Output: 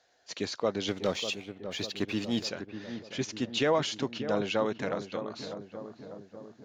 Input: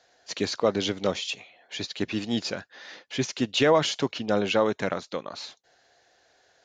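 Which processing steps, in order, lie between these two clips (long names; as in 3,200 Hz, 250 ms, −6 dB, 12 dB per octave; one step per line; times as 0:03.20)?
0:00.88–0:02.49: leveller curve on the samples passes 1
on a send: feedback echo with a low-pass in the loop 597 ms, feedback 64%, low-pass 1,100 Hz, level −9 dB
on the sum: level −6 dB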